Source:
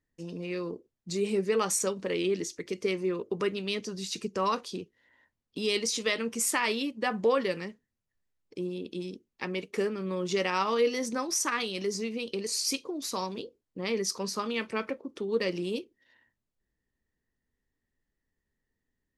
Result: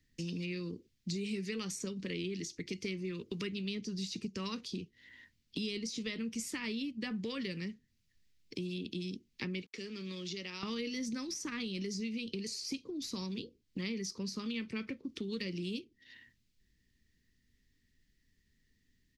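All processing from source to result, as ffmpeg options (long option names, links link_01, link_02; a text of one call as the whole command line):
ffmpeg -i in.wav -filter_complex "[0:a]asettb=1/sr,asplit=3[link_01][link_02][link_03];[link_01]atrim=end=9.624[link_04];[link_02]atrim=start=9.62:end=10.63,asetpts=PTS-STARTPTS,afade=type=in:duration=0.004:curve=qsin,afade=type=out:start_time=1.006:duration=0.004:curve=qsin,acrossover=split=140|3000[link_05][link_06][link_07];[link_06]acompressor=threshold=-48dB:ratio=2.5:attack=3.2:release=140:knee=2.83:detection=peak[link_08];[link_05][link_08][link_07]amix=inputs=3:normalize=0,aeval=exprs='val(0)*gte(abs(val(0)),0.00188)':channel_layout=same,acrossover=split=270 6500:gain=0.178 1 0.112[link_09][link_10][link_11];[link_09][link_10][link_11]amix=inputs=3:normalize=0[link_12];[link_03]atrim=start=10.626[link_13];[link_04][link_12]acrossfade=duration=0.004:curve1=hsin:curve2=qsin[link_14];[link_14][link_13]acrossfade=duration=0.004:curve1=qsin:curve2=hsin,firequalizer=gain_entry='entry(230,0);entry(660,-18);entry(2100,4);entry(4700,8);entry(8800,-2)':delay=0.05:min_phase=1,acrossover=split=170|1200[link_15][link_16][link_17];[link_15]acompressor=threshold=-56dB:ratio=4[link_18];[link_16]acompressor=threshold=-52dB:ratio=4[link_19];[link_17]acompressor=threshold=-54dB:ratio=4[link_20];[link_18][link_19][link_20]amix=inputs=3:normalize=0,lowshelf=frequency=390:gain=3,volume=7.5dB" out.wav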